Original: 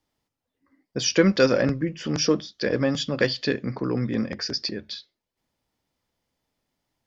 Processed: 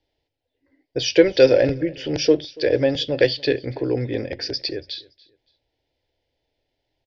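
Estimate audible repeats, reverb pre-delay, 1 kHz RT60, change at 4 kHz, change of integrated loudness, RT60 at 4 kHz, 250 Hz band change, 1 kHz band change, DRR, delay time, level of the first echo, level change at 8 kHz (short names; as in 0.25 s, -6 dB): 2, none, none, +2.5 dB, +4.0 dB, none, +0.5 dB, -2.5 dB, none, 0.284 s, -23.5 dB, n/a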